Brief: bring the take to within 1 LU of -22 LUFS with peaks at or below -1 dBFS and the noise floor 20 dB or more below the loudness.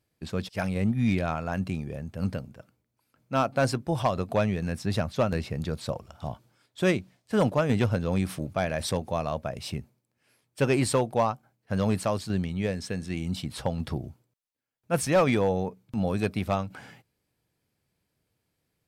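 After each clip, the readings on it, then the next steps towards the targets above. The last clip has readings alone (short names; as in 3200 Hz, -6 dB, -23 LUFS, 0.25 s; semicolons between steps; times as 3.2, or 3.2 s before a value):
clipped 0.3%; flat tops at -15.5 dBFS; loudness -28.5 LUFS; peak -15.5 dBFS; loudness target -22.0 LUFS
-> clip repair -15.5 dBFS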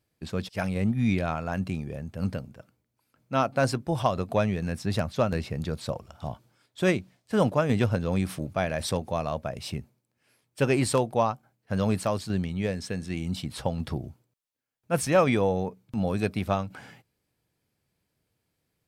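clipped 0.0%; loudness -28.0 LUFS; peak -9.0 dBFS; loudness target -22.0 LUFS
-> gain +6 dB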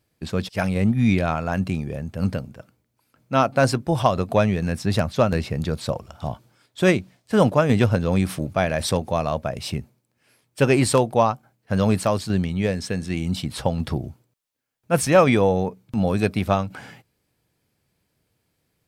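loudness -22.0 LUFS; peak -3.0 dBFS; noise floor -73 dBFS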